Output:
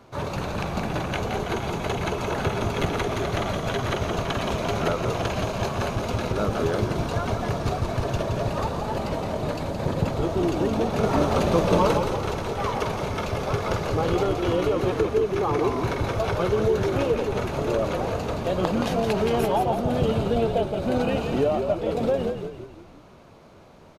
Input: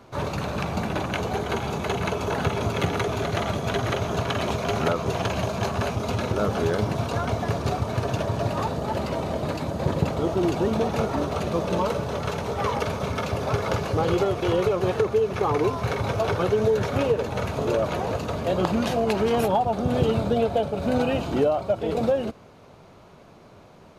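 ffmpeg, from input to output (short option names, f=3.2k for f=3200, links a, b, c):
-filter_complex "[0:a]asettb=1/sr,asplit=3[a][b][c];[a]atrim=end=11.034[d];[b]atrim=start=11.03:end=11.98,asetpts=PTS-STARTPTS,afade=t=in:d=0.004:c=qsin,afade=t=out:st=0.946:d=0.004:c=qsin,acontrast=35[e];[c]atrim=start=11.976[f];[d][e]acrossfade=d=0.004:c1=hsin:c2=qsin[g];[g][f]acrossfade=d=0.004:c1=qsin:c2=hsin,asplit=2[h][i];[i]asplit=6[j][k][l][m][n][o];[j]adelay=170,afreqshift=-49,volume=-6dB[p];[k]adelay=340,afreqshift=-98,volume=-12.4dB[q];[l]adelay=510,afreqshift=-147,volume=-18.8dB[r];[m]adelay=680,afreqshift=-196,volume=-25.1dB[s];[n]adelay=850,afreqshift=-245,volume=-31.5dB[t];[o]adelay=1020,afreqshift=-294,volume=-37.9dB[u];[p][q][r][s][t][u]amix=inputs=6:normalize=0[v];[h][v]amix=inputs=2:normalize=0,volume=-1.5dB"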